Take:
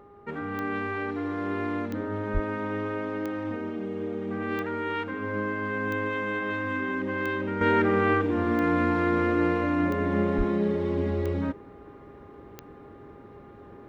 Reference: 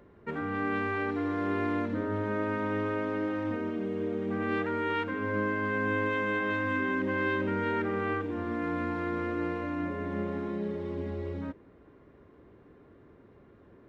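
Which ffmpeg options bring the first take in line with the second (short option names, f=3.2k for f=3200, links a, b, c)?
-filter_complex "[0:a]adeclick=t=4,bandreject=f=406.9:t=h:w=4,bandreject=f=813.8:t=h:w=4,bandreject=f=1.2207k:t=h:w=4,asplit=3[a][b][c];[a]afade=t=out:st=2.33:d=0.02[d];[b]highpass=f=140:w=0.5412,highpass=f=140:w=1.3066,afade=t=in:st=2.33:d=0.02,afade=t=out:st=2.45:d=0.02[e];[c]afade=t=in:st=2.45:d=0.02[f];[d][e][f]amix=inputs=3:normalize=0,asplit=3[g][h][i];[g]afade=t=out:st=10.37:d=0.02[j];[h]highpass=f=140:w=0.5412,highpass=f=140:w=1.3066,afade=t=in:st=10.37:d=0.02,afade=t=out:st=10.49:d=0.02[k];[i]afade=t=in:st=10.49:d=0.02[l];[j][k][l]amix=inputs=3:normalize=0,asetnsamples=n=441:p=0,asendcmd='7.61 volume volume -8dB',volume=0dB"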